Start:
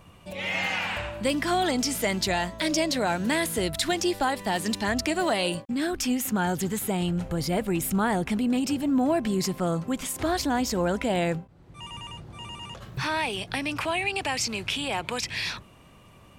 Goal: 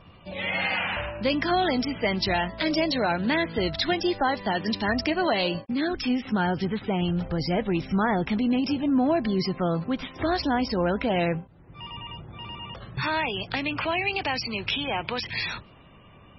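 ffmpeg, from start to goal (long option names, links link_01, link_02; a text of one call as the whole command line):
ffmpeg -i in.wav -af "volume=1.5dB" -ar 24000 -c:a libmp3lame -b:a 16k out.mp3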